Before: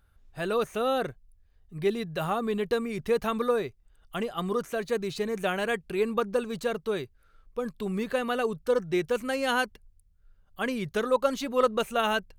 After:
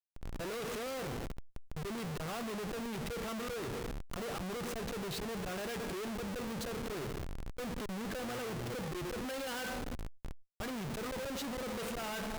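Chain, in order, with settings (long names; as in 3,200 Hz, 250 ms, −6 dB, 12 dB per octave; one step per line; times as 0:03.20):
on a send at −14 dB: convolution reverb RT60 0.95 s, pre-delay 6 ms
on the sum: volume swells 386 ms
0:08.26–0:08.72: hum with harmonics 120 Hz, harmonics 3, −41 dBFS −3 dB per octave
in parallel at −2 dB: downward compressor, threshold −37 dBFS, peak gain reduction 15 dB
on the sum: comparator with hysteresis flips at −46.5 dBFS
level that may fall only so fast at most 110 dB per second
level −6 dB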